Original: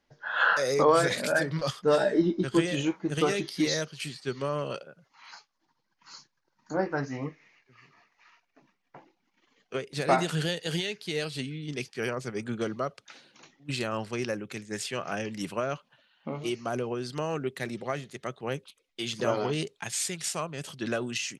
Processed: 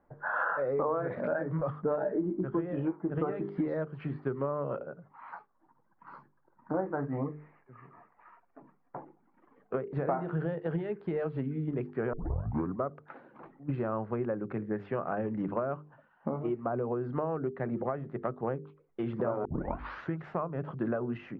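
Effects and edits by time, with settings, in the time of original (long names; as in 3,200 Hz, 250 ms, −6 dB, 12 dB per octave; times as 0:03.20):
0:12.13: tape start 0.67 s
0:19.45: tape start 0.74 s
whole clip: low-pass filter 1,300 Hz 24 dB per octave; mains-hum notches 50/100/150/200/250/300/350/400/450 Hz; downward compressor 5 to 1, threshold −38 dBFS; level +8.5 dB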